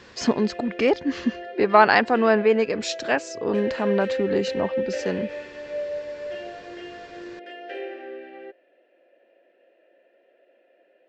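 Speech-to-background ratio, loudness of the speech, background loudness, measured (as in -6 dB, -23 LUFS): 10.5 dB, -22.5 LUFS, -33.0 LUFS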